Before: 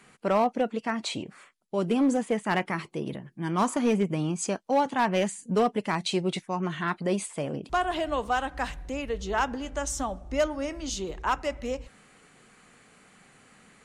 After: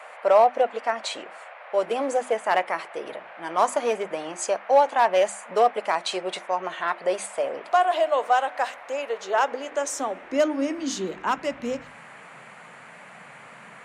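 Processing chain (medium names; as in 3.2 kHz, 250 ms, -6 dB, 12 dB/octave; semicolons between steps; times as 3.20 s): band noise 500–2300 Hz -48 dBFS; high-pass sweep 600 Hz -> 140 Hz, 9.17–11.97 s; hum notches 50/100/150/200/250/300/350 Hz; trim +1.5 dB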